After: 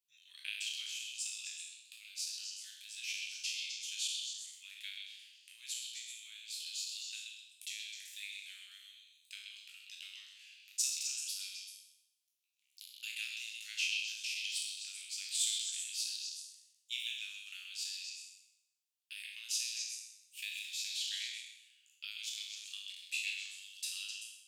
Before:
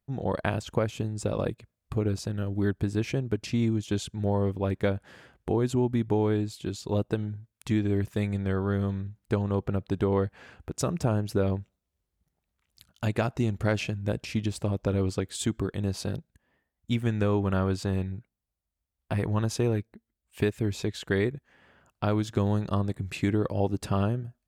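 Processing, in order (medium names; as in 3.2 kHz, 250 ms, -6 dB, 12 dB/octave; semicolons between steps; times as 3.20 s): spectral sustain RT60 0.81 s; elliptic high-pass 2.6 kHz, stop band 70 dB; on a send: repeats whose band climbs or falls 129 ms, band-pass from 3.3 kHz, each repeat 0.7 oct, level -2 dB; on the sum: trim -1 dB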